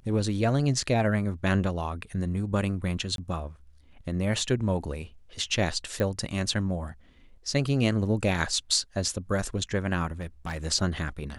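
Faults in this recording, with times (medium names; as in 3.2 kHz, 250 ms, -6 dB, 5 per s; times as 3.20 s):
3.16–3.18 s: dropout 22 ms
6.00 s: pop -16 dBFS
10.20–10.65 s: clipped -28.5 dBFS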